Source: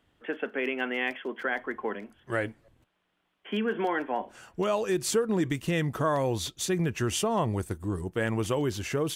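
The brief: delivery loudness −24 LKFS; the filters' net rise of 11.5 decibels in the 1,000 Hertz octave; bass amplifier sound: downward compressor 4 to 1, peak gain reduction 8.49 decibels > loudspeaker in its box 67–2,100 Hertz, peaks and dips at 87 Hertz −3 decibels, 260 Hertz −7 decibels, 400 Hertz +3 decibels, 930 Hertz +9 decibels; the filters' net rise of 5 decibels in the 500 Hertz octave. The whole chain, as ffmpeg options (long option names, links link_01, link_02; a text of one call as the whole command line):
ffmpeg -i in.wav -af "equalizer=frequency=500:width_type=o:gain=3,equalizer=frequency=1000:width_type=o:gain=6.5,acompressor=threshold=-26dB:ratio=4,highpass=frequency=67:width=0.5412,highpass=frequency=67:width=1.3066,equalizer=frequency=87:width_type=q:width=4:gain=-3,equalizer=frequency=260:width_type=q:width=4:gain=-7,equalizer=frequency=400:width_type=q:width=4:gain=3,equalizer=frequency=930:width_type=q:width=4:gain=9,lowpass=frequency=2100:width=0.5412,lowpass=frequency=2100:width=1.3066,volume=6dB" out.wav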